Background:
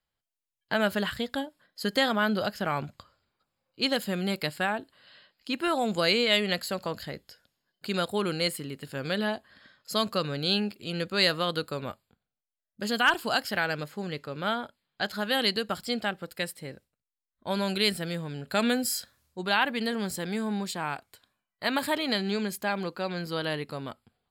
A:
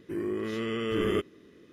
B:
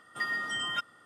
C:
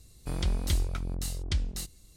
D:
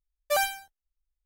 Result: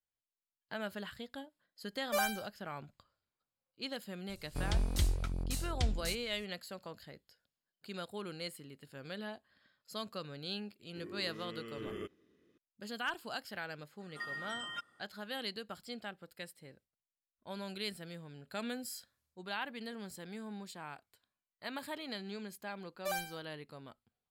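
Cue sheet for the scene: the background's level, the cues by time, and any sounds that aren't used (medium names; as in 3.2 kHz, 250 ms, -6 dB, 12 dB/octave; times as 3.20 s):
background -14.5 dB
1.82 s: add D -7.5 dB
4.29 s: add C -3.5 dB
10.86 s: add A -15.5 dB
14.00 s: add B -10 dB
22.75 s: add D -12 dB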